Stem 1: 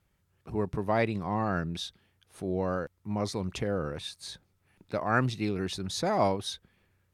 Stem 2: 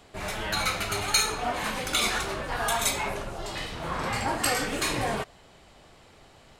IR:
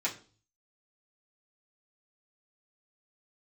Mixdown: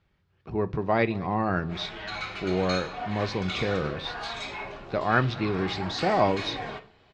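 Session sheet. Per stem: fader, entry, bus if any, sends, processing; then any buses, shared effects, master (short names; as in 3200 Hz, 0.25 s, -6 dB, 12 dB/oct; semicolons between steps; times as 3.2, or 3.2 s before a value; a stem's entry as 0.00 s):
+2.5 dB, 0.00 s, send -14.5 dB, echo send -21 dB, dry
-10.0 dB, 1.55 s, send -5 dB, no echo send, soft clip -18 dBFS, distortion -18 dB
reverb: on, RT60 0.40 s, pre-delay 3 ms
echo: echo 0.216 s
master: LPF 4700 Hz 24 dB/oct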